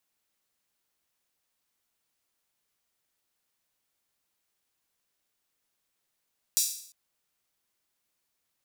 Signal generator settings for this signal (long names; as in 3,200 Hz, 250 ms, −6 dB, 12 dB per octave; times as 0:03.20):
open synth hi-hat length 0.35 s, high-pass 5,500 Hz, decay 0.60 s